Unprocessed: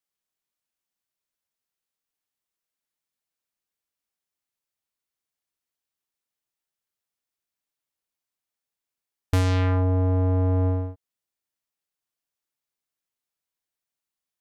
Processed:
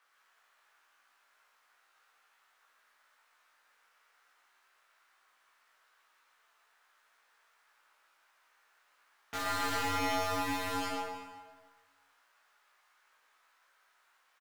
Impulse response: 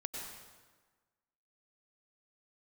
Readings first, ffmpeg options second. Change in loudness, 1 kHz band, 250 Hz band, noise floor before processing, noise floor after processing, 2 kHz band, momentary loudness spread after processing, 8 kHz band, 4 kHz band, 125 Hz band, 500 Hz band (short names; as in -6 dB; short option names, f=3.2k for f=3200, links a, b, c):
-11.0 dB, +2.0 dB, -12.0 dB, under -85 dBFS, -71 dBFS, +3.0 dB, 14 LU, n/a, +3.0 dB, -27.0 dB, -9.5 dB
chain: -filter_complex "[0:a]highpass=690,aphaser=in_gain=1:out_gain=1:delay=4.8:decay=0.23:speed=0.38:type=triangular,equalizer=f=1.4k:w=1.1:g=11,aeval=exprs='0.0668*sin(PI/2*10*val(0)/0.0668)':c=same,lowpass=f=1.9k:p=1,aeval=exprs='0.0668*(cos(1*acos(clip(val(0)/0.0668,-1,1)))-cos(1*PI/2))+0.00335*(cos(8*acos(clip(val(0)/0.0668,-1,1)))-cos(8*PI/2))':c=same,asplit=2[a][b];[b]adelay=18,volume=-2.5dB[c];[a][c]amix=inputs=2:normalize=0,aecho=1:1:118:0.668,asplit=2[d][e];[1:a]atrim=start_sample=2205,adelay=57[f];[e][f]afir=irnorm=-1:irlink=0,volume=-4dB[g];[d][g]amix=inputs=2:normalize=0,volume=-6.5dB"